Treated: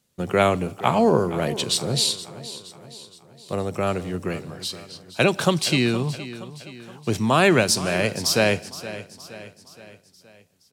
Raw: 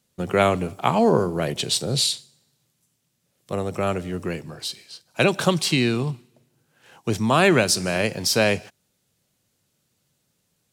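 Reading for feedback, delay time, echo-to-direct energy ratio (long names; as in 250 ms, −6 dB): 51%, 470 ms, −13.5 dB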